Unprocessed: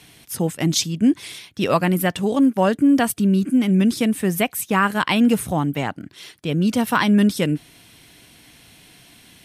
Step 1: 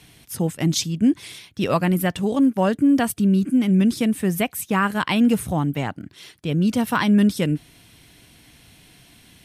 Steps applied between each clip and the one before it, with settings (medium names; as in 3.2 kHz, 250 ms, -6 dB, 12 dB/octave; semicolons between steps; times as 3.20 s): bass shelf 140 Hz +8 dB; trim -3 dB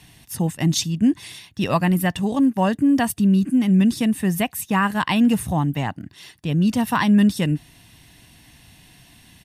comb 1.1 ms, depth 40%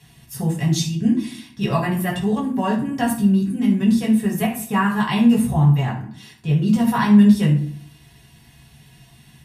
reverberation RT60 0.55 s, pre-delay 3 ms, DRR -5 dB; trim -7 dB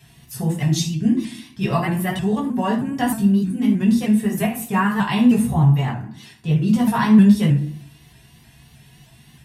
vibrato with a chosen wave saw up 3.2 Hz, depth 100 cents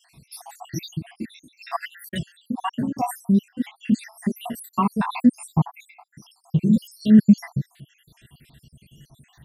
random holes in the spectrogram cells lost 77%